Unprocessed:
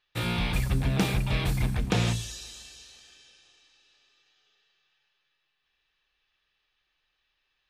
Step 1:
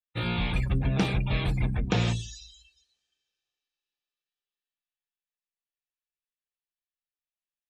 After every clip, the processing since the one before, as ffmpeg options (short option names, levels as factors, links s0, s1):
-af "afftdn=nr=28:nf=-39"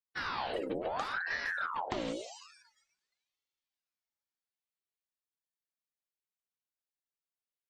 -af "acompressor=threshold=0.0501:ratio=6,aeval=exprs='val(0)*sin(2*PI*1100*n/s+1100*0.65/0.72*sin(2*PI*0.72*n/s))':c=same,volume=0.668"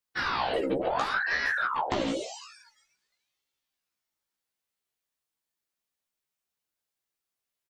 -filter_complex "[0:a]asplit=2[s0][s1];[s1]adelay=15,volume=0.75[s2];[s0][s2]amix=inputs=2:normalize=0,volume=1.88"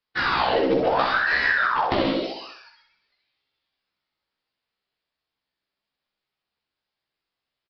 -af "aresample=11025,acrusher=bits=6:mode=log:mix=0:aa=0.000001,aresample=44100,aecho=1:1:64|128|192|256|320|384:0.501|0.246|0.12|0.059|0.0289|0.0142,volume=2"